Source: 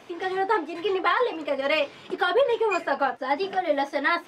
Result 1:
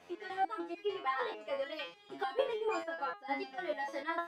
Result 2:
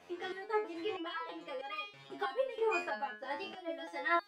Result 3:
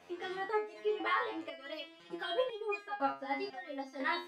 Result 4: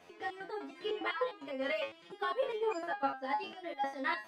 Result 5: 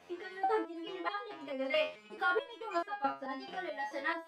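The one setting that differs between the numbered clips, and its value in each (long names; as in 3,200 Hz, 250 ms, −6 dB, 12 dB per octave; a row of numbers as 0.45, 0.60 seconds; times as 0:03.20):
step-sequenced resonator, speed: 6.7, 3.1, 2, 9.9, 4.6 Hertz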